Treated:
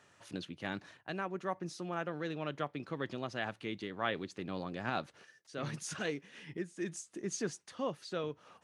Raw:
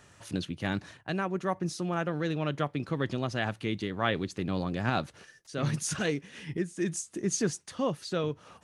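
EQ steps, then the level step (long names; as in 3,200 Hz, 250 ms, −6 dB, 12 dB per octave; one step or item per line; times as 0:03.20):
high-pass filter 290 Hz 6 dB per octave
high-shelf EQ 7,400 Hz −9.5 dB
−5.0 dB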